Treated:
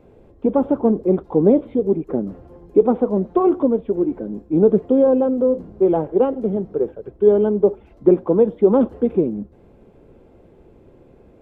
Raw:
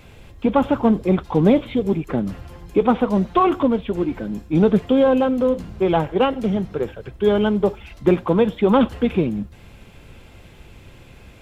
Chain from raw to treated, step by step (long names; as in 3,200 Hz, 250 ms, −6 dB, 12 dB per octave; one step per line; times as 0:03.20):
drawn EQ curve 110 Hz 0 dB, 410 Hz +14 dB, 2,800 Hz −13 dB
level −9 dB